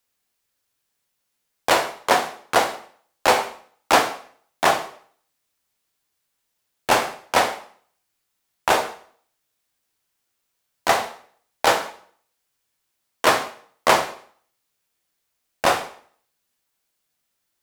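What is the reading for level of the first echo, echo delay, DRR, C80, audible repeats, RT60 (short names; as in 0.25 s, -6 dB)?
none, none, 5.5 dB, 15.0 dB, none, 0.50 s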